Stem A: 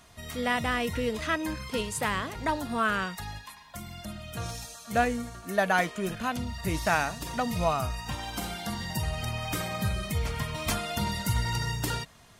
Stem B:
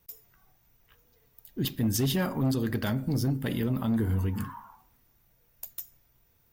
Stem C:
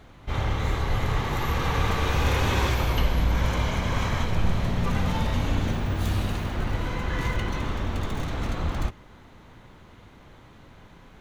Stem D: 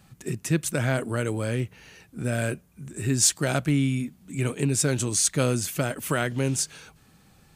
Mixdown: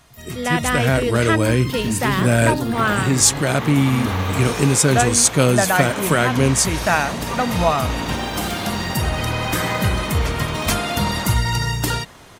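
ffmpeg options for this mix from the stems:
ffmpeg -i stem1.wav -i stem2.wav -i stem3.wav -i stem4.wav -filter_complex "[0:a]volume=2.5dB[link_01];[1:a]acrusher=bits=8:mix=0:aa=0.000001,deesser=0.65,adelay=50,volume=-1dB[link_02];[2:a]highpass=240,alimiter=limit=-21dB:level=0:latency=1:release=471,adelay=2450,volume=-1dB[link_03];[3:a]dynaudnorm=framelen=620:gausssize=3:maxgain=11.5dB,volume=-4dB,asplit=2[link_04][link_05];[link_05]apad=whole_len=290067[link_06];[link_02][link_06]sidechaincompress=threshold=-23dB:ratio=8:attack=16:release=185[link_07];[link_01][link_07][link_03][link_04]amix=inputs=4:normalize=0,dynaudnorm=framelen=190:gausssize=5:maxgain=7dB" out.wav

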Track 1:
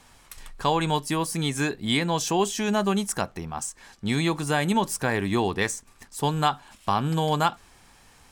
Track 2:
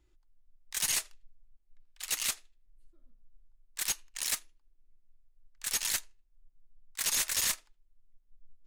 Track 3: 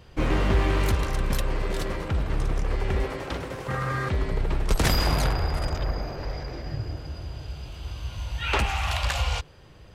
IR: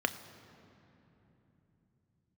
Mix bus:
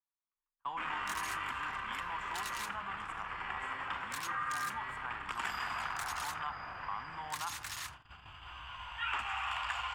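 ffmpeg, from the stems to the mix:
-filter_complex "[0:a]highshelf=frequency=2000:gain=-11.5,volume=-7.5dB,asplit=3[link_01][link_02][link_03];[link_02]volume=-17.5dB[link_04];[1:a]acompressor=threshold=-38dB:ratio=6,adelay=350,volume=1dB[link_05];[2:a]lowpass=frequency=2900:poles=1,aeval=exprs='(tanh(7.08*val(0)+0.15)-tanh(0.15))/7.08':channel_layout=same,adelay=600,volume=-5dB,asplit=2[link_06][link_07];[link_07]volume=-4.5dB[link_08];[link_03]apad=whole_len=465249[link_09];[link_06][link_09]sidechaincompress=threshold=-42dB:ratio=8:attack=5.5:release=889[link_10];[link_01][link_10]amix=inputs=2:normalize=0,lowpass=1800,alimiter=level_in=7.5dB:limit=-24dB:level=0:latency=1,volume=-7.5dB,volume=0dB[link_11];[3:a]atrim=start_sample=2205[link_12];[link_04][link_08]amix=inputs=2:normalize=0[link_13];[link_13][link_12]afir=irnorm=-1:irlink=0[link_14];[link_05][link_11][link_14]amix=inputs=3:normalize=0,agate=range=-41dB:threshold=-39dB:ratio=16:detection=peak,lowshelf=frequency=730:width_type=q:width=3:gain=-13,acrossover=split=480|1600|4700[link_15][link_16][link_17][link_18];[link_15]acompressor=threshold=-54dB:ratio=4[link_19];[link_16]acompressor=threshold=-38dB:ratio=4[link_20];[link_17]acompressor=threshold=-42dB:ratio=4[link_21];[link_18]acompressor=threshold=-48dB:ratio=4[link_22];[link_19][link_20][link_21][link_22]amix=inputs=4:normalize=0"

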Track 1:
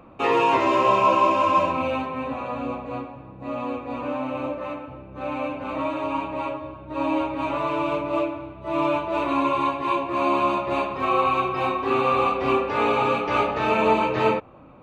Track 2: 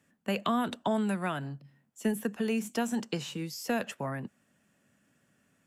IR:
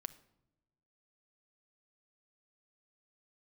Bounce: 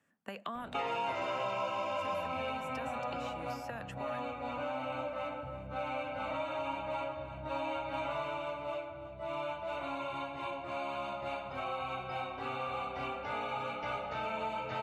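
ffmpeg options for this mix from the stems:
-filter_complex "[0:a]aecho=1:1:1.4:0.64,adelay=550,volume=-4dB,afade=type=out:start_time=8.18:duration=0.26:silence=0.421697,asplit=2[link_01][link_02];[link_02]volume=-15.5dB[link_03];[1:a]acompressor=threshold=-32dB:ratio=6,equalizer=frequency=1100:width_type=o:width=2.7:gain=8.5,volume=-10.5dB[link_04];[link_03]aecho=0:1:337:1[link_05];[link_01][link_04][link_05]amix=inputs=3:normalize=0,acrossover=split=830|3700[link_06][link_07][link_08];[link_06]acompressor=threshold=-41dB:ratio=4[link_09];[link_07]acompressor=threshold=-38dB:ratio=4[link_10];[link_08]acompressor=threshold=-58dB:ratio=4[link_11];[link_09][link_10][link_11]amix=inputs=3:normalize=0"

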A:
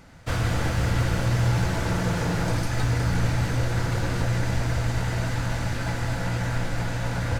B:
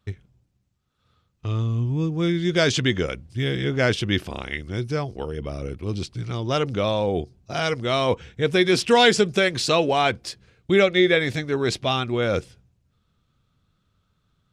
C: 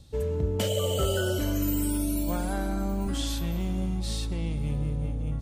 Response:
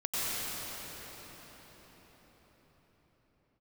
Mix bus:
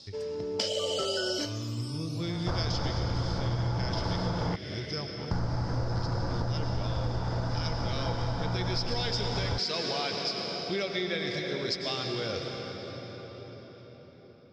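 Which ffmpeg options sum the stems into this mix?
-filter_complex "[0:a]highshelf=frequency=1600:width_type=q:width=1.5:gain=-13.5,adelay=2200,volume=2dB,asplit=3[link_01][link_02][link_03];[link_01]atrim=end=4.56,asetpts=PTS-STARTPTS,afade=type=out:start_time=4.556:duration=0.004:curve=hsin[link_04];[link_02]atrim=start=4.56:end=5.31,asetpts=PTS-STARTPTS,volume=0[link_05];[link_03]atrim=start=5.31,asetpts=PTS-STARTPTS,afade=type=in:duration=0.004:curve=hsin[link_06];[link_04][link_05][link_06]concat=n=3:v=0:a=1[link_07];[1:a]volume=-14.5dB,asplit=3[link_08][link_09][link_10];[link_09]volume=-9.5dB[link_11];[2:a]highpass=290,volume=2.5dB[link_12];[link_10]apad=whole_len=238645[link_13];[link_12][link_13]sidechaincompress=threshold=-48dB:ratio=8:attack=41:release=1230[link_14];[3:a]atrim=start_sample=2205[link_15];[link_11][link_15]afir=irnorm=-1:irlink=0[link_16];[link_07][link_08][link_14][link_16]amix=inputs=4:normalize=0,lowpass=frequency=5100:width_type=q:width=12,acompressor=threshold=-27dB:ratio=6"

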